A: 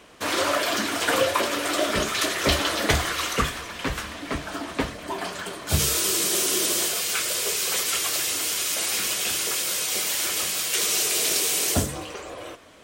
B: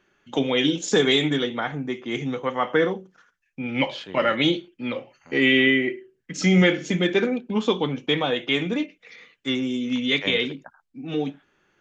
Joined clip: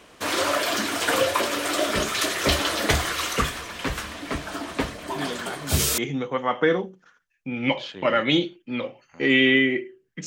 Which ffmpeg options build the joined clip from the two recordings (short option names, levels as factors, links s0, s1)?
-filter_complex "[1:a]asplit=2[s0][s1];[0:a]apad=whole_dur=10.26,atrim=end=10.26,atrim=end=5.982[s2];[s1]atrim=start=2.098:end=6.38[s3];[s0]atrim=start=1.28:end=2.1,asetpts=PTS-STARTPTS,volume=0.398,afade=t=in:d=0.004:c=hsin,afade=t=out:st=0.816:d=0.004:c=hsin,adelay=5160[s4];[s2][s3]acrossfade=d=0.004:c1=hsin:c2=hsin[s5];[s5][s4]amix=inputs=2:normalize=0"